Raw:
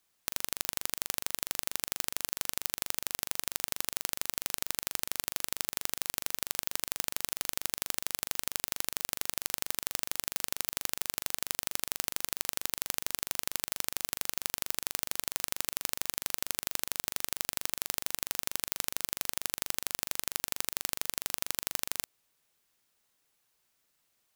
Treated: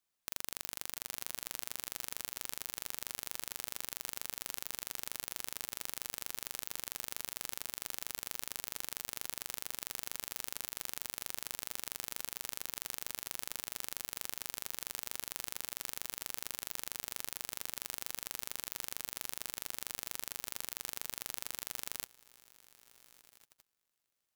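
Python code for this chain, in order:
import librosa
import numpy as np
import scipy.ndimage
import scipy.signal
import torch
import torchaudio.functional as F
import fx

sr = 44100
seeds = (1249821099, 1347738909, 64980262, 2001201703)

y = fx.echo_heads(x, sr, ms=229, heads='first and third', feedback_pct=41, wet_db=-16.5)
y = fx.level_steps(y, sr, step_db=22)
y = F.gain(torch.from_numpy(y), 2.5).numpy()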